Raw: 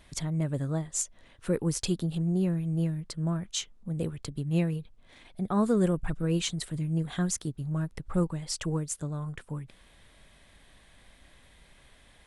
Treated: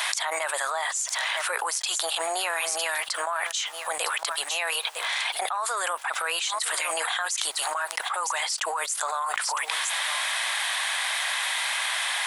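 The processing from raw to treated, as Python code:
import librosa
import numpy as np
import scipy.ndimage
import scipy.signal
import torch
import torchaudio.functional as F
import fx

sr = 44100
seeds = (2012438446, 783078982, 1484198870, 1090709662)

y = scipy.signal.sosfilt(scipy.signal.butter(6, 780.0, 'highpass', fs=sr, output='sos'), x)
y = y + 10.0 ** (-23.5 / 20.0) * np.pad(y, (int(957 * sr / 1000.0), 0))[:len(y)]
y = fx.env_flatten(y, sr, amount_pct=100)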